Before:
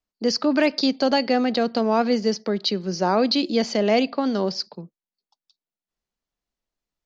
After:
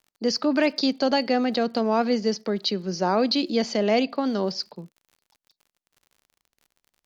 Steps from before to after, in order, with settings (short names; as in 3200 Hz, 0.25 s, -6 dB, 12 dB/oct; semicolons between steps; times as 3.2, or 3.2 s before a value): crackle 55/s -43 dBFS; gain -2 dB